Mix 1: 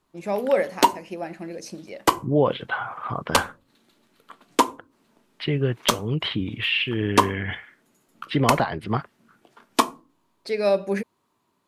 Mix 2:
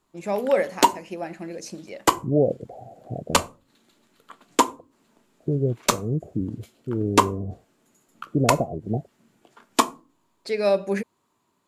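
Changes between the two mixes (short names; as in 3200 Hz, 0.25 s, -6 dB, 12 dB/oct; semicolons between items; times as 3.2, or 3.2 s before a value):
second voice: add steep low-pass 730 Hz 96 dB/oct; master: add bell 7200 Hz +7.5 dB 0.21 oct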